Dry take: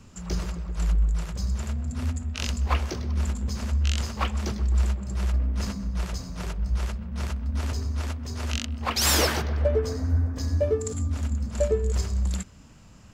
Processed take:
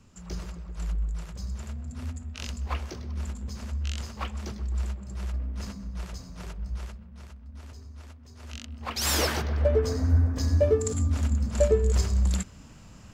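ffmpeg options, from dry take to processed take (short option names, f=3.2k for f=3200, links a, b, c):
-af "volume=11dB,afade=t=out:st=6.66:d=0.57:silence=0.354813,afade=t=in:st=8.36:d=0.61:silence=0.316228,afade=t=in:st=8.97:d=1.08:silence=0.398107"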